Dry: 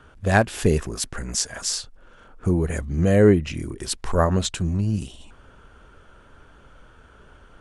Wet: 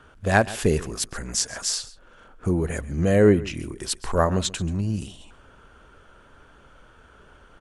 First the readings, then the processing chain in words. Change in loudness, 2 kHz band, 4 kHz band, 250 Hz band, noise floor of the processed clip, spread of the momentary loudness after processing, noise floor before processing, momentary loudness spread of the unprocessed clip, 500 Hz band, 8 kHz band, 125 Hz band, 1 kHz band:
-1.5 dB, 0.0 dB, 0.0 dB, -1.5 dB, -53 dBFS, 14 LU, -51 dBFS, 13 LU, -0.5 dB, 0.0 dB, -3.0 dB, 0.0 dB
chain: bass shelf 210 Hz -4 dB; on a send: delay 134 ms -18.5 dB

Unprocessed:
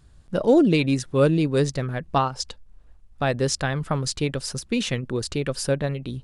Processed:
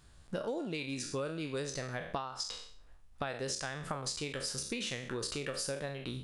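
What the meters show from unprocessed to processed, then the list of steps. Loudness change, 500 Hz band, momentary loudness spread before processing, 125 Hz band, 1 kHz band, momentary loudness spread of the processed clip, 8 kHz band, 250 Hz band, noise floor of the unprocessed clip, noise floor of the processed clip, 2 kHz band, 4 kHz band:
-14.5 dB, -15.5 dB, 9 LU, -18.0 dB, -14.0 dB, 4 LU, -7.0 dB, -18.0 dB, -53 dBFS, -57 dBFS, -10.0 dB, -8.0 dB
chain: spectral sustain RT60 0.44 s; bass shelf 420 Hz -9.5 dB; compression 12:1, threshold -34 dBFS, peak gain reduction 18.5 dB

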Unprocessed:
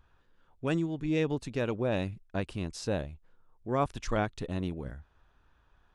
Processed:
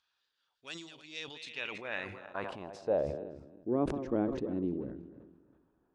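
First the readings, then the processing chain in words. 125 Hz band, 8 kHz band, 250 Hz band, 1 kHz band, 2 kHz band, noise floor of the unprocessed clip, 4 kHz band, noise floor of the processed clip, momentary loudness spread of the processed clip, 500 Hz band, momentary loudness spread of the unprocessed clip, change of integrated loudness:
-10.5 dB, no reading, -3.0 dB, -6.0 dB, -1.5 dB, -67 dBFS, -1.0 dB, -81 dBFS, 13 LU, -2.0 dB, 10 LU, -3.5 dB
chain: backward echo that repeats 162 ms, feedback 48%, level -12 dB; band-pass sweep 4.5 kHz -> 320 Hz, 1.21–3.45 s; decay stretcher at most 55 dB/s; trim +5.5 dB

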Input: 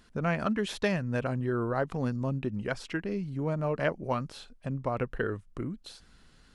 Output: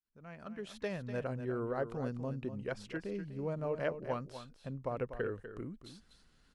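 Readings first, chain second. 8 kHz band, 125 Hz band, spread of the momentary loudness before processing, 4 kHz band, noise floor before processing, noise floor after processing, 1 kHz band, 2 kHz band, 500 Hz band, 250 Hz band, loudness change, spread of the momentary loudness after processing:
under -10 dB, -9.5 dB, 9 LU, -11.0 dB, -59 dBFS, -68 dBFS, -9.0 dB, -10.0 dB, -5.5 dB, -9.0 dB, -7.5 dB, 11 LU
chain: fade-in on the opening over 1.27 s; on a send: delay 246 ms -10.5 dB; on the sum: dynamic bell 480 Hz, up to +6 dB, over -44 dBFS, Q 2.2; trim -9 dB

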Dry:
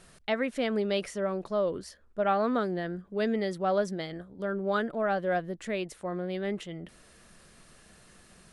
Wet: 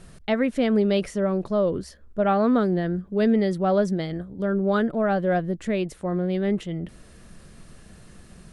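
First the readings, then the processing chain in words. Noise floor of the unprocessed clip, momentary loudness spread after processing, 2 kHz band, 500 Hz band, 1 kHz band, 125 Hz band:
-57 dBFS, 8 LU, +2.5 dB, +6.0 dB, +3.5 dB, +11.0 dB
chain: bass shelf 340 Hz +12 dB; trim +2 dB

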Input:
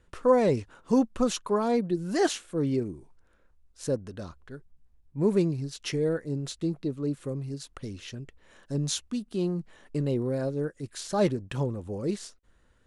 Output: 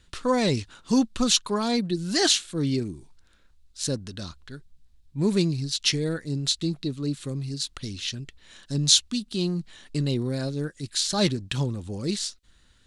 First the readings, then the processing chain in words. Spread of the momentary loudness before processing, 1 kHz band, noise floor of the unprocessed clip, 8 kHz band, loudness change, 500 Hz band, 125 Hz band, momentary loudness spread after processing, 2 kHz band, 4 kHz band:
16 LU, 0.0 dB, -64 dBFS, +11.5 dB, +3.5 dB, -3.0 dB, +3.5 dB, 12 LU, +6.0 dB, +15.0 dB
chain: graphic EQ 500/1000/4000/8000 Hz -8/-3/+12/+5 dB; trim +4 dB

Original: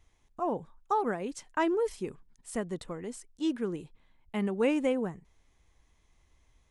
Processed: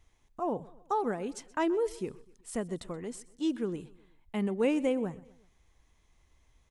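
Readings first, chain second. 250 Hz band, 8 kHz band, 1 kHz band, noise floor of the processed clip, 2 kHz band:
0.0 dB, 0.0 dB, -2.0 dB, -68 dBFS, -3.0 dB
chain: dynamic bell 1.5 kHz, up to -4 dB, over -44 dBFS, Q 0.84; on a send: feedback delay 126 ms, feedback 48%, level -21 dB

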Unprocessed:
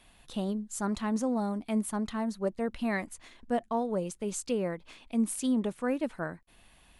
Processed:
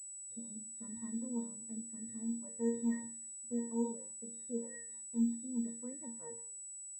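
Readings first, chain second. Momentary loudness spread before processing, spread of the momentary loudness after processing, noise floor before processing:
8 LU, 10 LU, -61 dBFS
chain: gate -49 dBFS, range -14 dB; pitch-class resonator A#, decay 0.45 s; de-hum 190.5 Hz, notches 4; rotary cabinet horn 0.65 Hz, later 5.5 Hz, at 2.93 s; class-D stage that switches slowly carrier 7.9 kHz; trim +4 dB

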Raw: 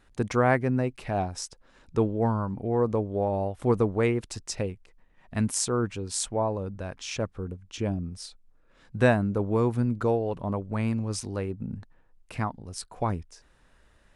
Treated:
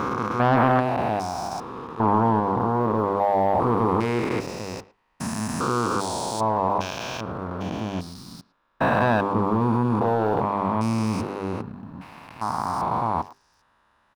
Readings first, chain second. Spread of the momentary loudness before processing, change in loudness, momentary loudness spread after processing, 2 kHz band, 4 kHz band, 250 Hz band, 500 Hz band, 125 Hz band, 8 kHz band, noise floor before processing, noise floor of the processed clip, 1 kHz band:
14 LU, +4.5 dB, 14 LU, +4.0 dB, +2.5 dB, +4.0 dB, +2.5 dB, +1.0 dB, -3.5 dB, -61 dBFS, -65 dBFS, +11.0 dB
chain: spectrogram pixelated in time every 400 ms; high-pass 270 Hz 6 dB/octave; hum notches 50/100/150/200/250/300/350/400/450 Hz; waveshaping leveller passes 2; ten-band graphic EQ 500 Hz -7 dB, 1 kHz +11 dB, 2 kHz -5 dB, 8 kHz -11 dB; speakerphone echo 110 ms, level -19 dB; trim +5.5 dB

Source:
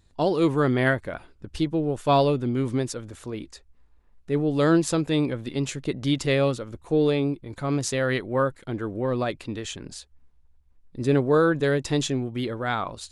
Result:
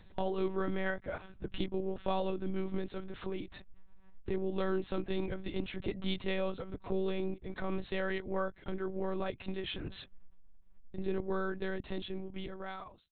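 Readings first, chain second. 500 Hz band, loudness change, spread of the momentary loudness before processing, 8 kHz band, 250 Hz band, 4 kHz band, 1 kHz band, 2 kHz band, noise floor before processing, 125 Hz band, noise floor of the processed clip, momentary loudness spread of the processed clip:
-11.5 dB, -13.0 dB, 15 LU, under -40 dB, -13.0 dB, -11.0 dB, -12.5 dB, -11.5 dB, -57 dBFS, -15.5 dB, -57 dBFS, 9 LU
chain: fade out at the end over 2.68 s; monotone LPC vocoder at 8 kHz 190 Hz; compression 2.5:1, threshold -44 dBFS, peak gain reduction 19.5 dB; trim +5.5 dB

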